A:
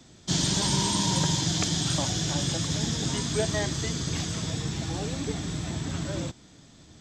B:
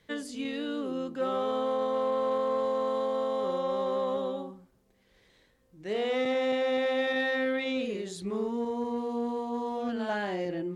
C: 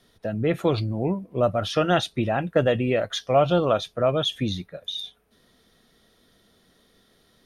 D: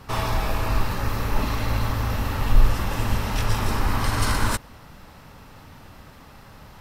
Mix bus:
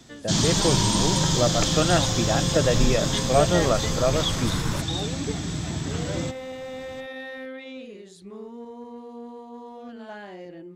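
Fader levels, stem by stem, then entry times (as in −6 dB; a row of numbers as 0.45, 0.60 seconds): +2.5, −8.0, −1.5, −9.0 decibels; 0.00, 0.00, 0.00, 0.25 seconds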